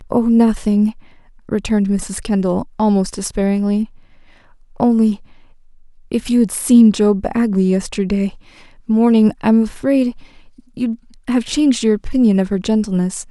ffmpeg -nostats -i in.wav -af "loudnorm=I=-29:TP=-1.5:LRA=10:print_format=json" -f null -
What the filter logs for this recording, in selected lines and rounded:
"input_i" : "-16.3",
"input_tp" : "-1.8",
"input_lra" : "2.9",
"input_thresh" : "-27.2",